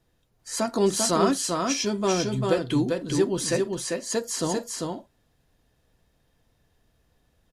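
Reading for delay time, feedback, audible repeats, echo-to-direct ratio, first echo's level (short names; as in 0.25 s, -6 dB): 0.395 s, no steady repeat, 2, -3.5 dB, -3.5 dB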